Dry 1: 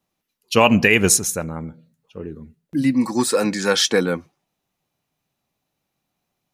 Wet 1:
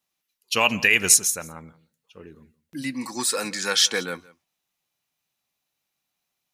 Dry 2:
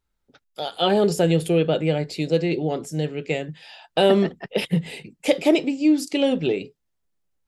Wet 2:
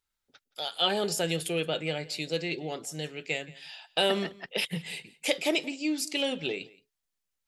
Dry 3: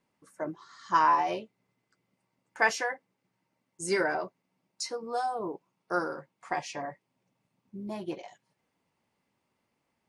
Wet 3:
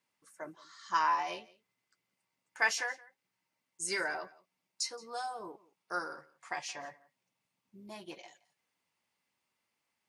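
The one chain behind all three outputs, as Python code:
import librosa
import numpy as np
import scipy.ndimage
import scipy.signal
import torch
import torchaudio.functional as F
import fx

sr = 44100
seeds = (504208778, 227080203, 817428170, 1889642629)

p1 = fx.tilt_shelf(x, sr, db=-7.5, hz=970.0)
p2 = p1 + fx.echo_single(p1, sr, ms=172, db=-21.5, dry=0)
y = p2 * librosa.db_to_amplitude(-6.5)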